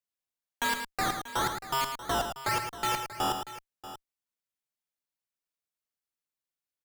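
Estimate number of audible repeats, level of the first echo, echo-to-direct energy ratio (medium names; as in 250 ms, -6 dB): 3, -17.0 dB, -6.5 dB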